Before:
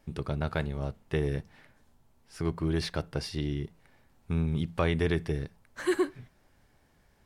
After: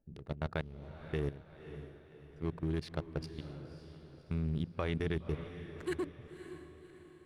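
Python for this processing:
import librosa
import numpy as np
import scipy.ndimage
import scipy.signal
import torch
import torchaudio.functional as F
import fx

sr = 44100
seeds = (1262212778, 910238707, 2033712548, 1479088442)

y = fx.wiener(x, sr, points=41)
y = fx.level_steps(y, sr, step_db=15)
y = fx.echo_diffused(y, sr, ms=559, feedback_pct=47, wet_db=-11)
y = y * librosa.db_to_amplitude(-3.0)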